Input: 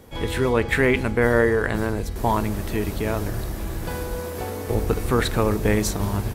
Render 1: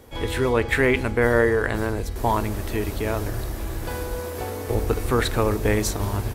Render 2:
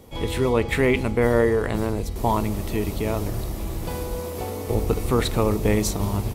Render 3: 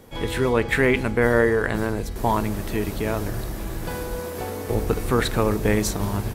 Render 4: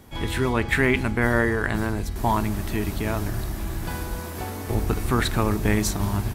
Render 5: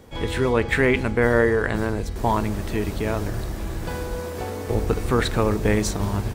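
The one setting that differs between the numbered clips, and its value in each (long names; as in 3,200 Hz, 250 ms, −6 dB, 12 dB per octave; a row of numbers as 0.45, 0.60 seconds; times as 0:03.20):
parametric band, centre frequency: 180, 1,600, 70, 490, 12,000 Hertz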